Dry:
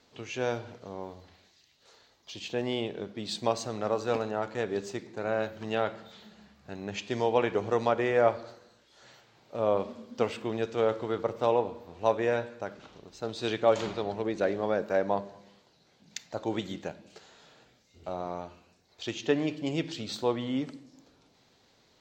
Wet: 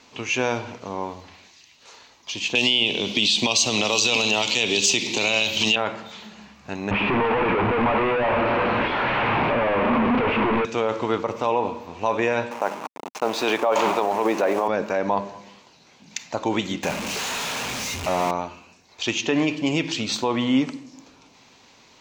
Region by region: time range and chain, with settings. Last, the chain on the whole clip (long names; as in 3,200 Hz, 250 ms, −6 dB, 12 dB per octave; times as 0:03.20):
0:02.55–0:05.76: high shelf with overshoot 2,200 Hz +11.5 dB, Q 3 + multiband upward and downward compressor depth 100%
0:06.91–0:10.65: sign of each sample alone + Bessel low-pass filter 1,700 Hz, order 6
0:12.51–0:14.68: hold until the input has moved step −43.5 dBFS + high-pass filter 200 Hz + parametric band 800 Hz +10.5 dB 2 octaves
0:16.83–0:18.31: converter with a step at zero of −35 dBFS + notch filter 320 Hz, Q 7
whole clip: brickwall limiter −21.5 dBFS; graphic EQ with 15 bands 250 Hz +5 dB, 1,000 Hz +9 dB, 2,500 Hz +10 dB, 6,300 Hz +8 dB; level +6.5 dB